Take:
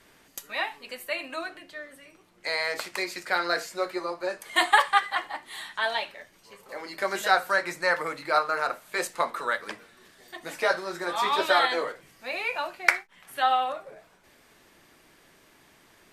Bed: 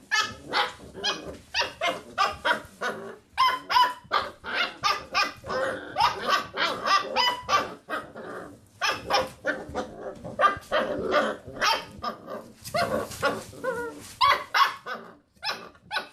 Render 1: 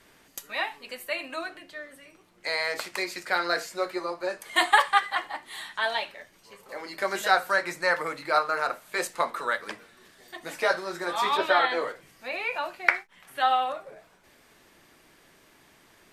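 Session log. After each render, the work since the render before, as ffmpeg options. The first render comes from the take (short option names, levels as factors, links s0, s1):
-filter_complex "[0:a]asettb=1/sr,asplit=3[s0][s1][s2];[s0]atrim=end=11.374[s3];[s1]atrim=start=11.37:end=13.4,asetpts=PTS-STARTPTS,afade=t=in:d=0.004:c=qsin,afade=t=out:st=2.026:d=0.004:c=qsin,acrossover=split=3700[s4][s5];[s5]acompressor=threshold=0.00398:ratio=4:attack=1:release=60[s6];[s4][s6]amix=inputs=2:normalize=0[s7];[s2]atrim=start=13.396[s8];[s3][s7]acrossfade=d=0.004:c1=hsin:c2=qsin[s9];[s9][s8]acrossfade=d=0.004:c1=qsin:c2=hsin"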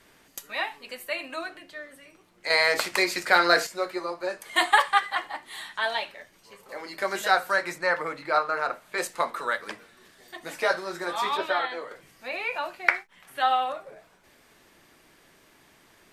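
-filter_complex "[0:a]asettb=1/sr,asplit=3[s0][s1][s2];[s0]atrim=end=2.504[s3];[s1]atrim=start=2.5:end=3.67,asetpts=PTS-STARTPTS,afade=t=in:d=0.004:c=qsin,afade=t=out:st=1.166:d=0.004:c=qsin,acontrast=84[s4];[s2]atrim=start=3.666[s5];[s3][s4]acrossfade=d=0.004:c1=hsin:c2=qsin[s6];[s6][s5]acrossfade=d=0.004:c1=qsin:c2=hsin,asettb=1/sr,asplit=3[s7][s8][s9];[s7]atrim=end=7.784[s10];[s8]atrim=start=7.78:end=8.98,asetpts=PTS-STARTPTS,afade=t=in:d=0.004:c=qsin,afade=t=out:st=1.196:d=0.004:c=qsin,aemphasis=mode=reproduction:type=cd[s11];[s9]atrim=start=8.976[s12];[s10][s11]acrossfade=d=0.004:c1=hsin:c2=qsin[s13];[s13][s12]acrossfade=d=0.004:c1=qsin:c2=hsin,asplit=2[s14][s15];[s14]atrim=end=11.91,asetpts=PTS-STARTPTS,afade=t=out:st=11.02:d=0.89:silence=0.334965[s16];[s15]atrim=start=11.91,asetpts=PTS-STARTPTS,afade=t=in:d=0.004:c=hsin:silence=0.334965[s17];[s16][s17]concat=n=2:v=0:a=1"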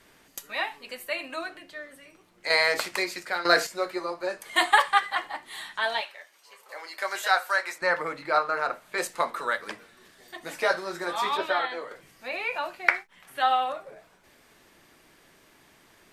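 -filter_complex "[0:a]asettb=1/sr,asplit=3[s0][s1][s2];[s0]atrim=end=6.014[s3];[s1]atrim=start=6.01:end=7.82,asetpts=PTS-STARTPTS,afade=t=in:d=0.004:c=qsin,afade=t=out:st=1.806:d=0.004:c=qsin,highpass=680[s4];[s2]atrim=start=7.816[s5];[s3][s4]acrossfade=d=0.004:c1=hsin:c2=qsin[s6];[s6][s5]acrossfade=d=0.004:c1=qsin:c2=hsin,asplit=2[s7][s8];[s7]atrim=end=3.45,asetpts=PTS-STARTPTS,afade=t=out:st=2.52:d=0.93:silence=0.223872[s9];[s8]atrim=start=3.45,asetpts=PTS-STARTPTS,afade=t=in:d=0.004:c=hsin:silence=0.223872[s10];[s9][s10]concat=n=2:v=0:a=1"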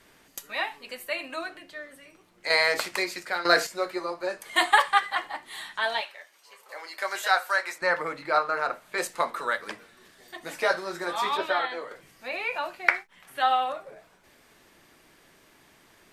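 -af anull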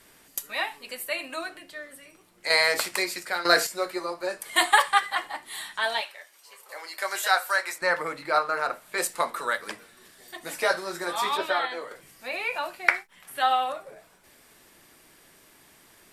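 -af "equalizer=f=11000:w=0.58:g=9,bandreject=f=6400:w=22"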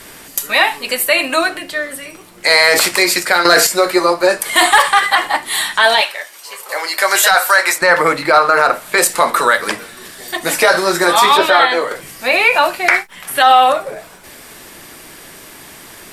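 -af "acontrast=82,alimiter=level_in=3.98:limit=0.891:release=50:level=0:latency=1"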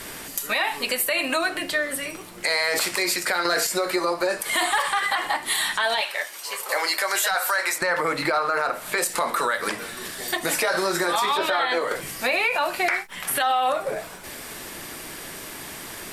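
-af "alimiter=limit=0.316:level=0:latency=1:release=182,acompressor=threshold=0.0794:ratio=2"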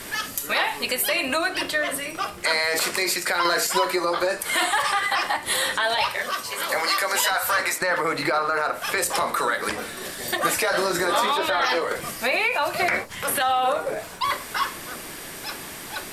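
-filter_complex "[1:a]volume=0.596[s0];[0:a][s0]amix=inputs=2:normalize=0"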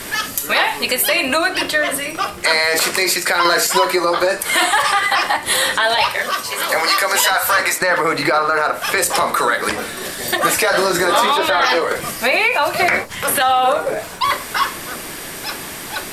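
-af "volume=2.24,alimiter=limit=0.794:level=0:latency=1"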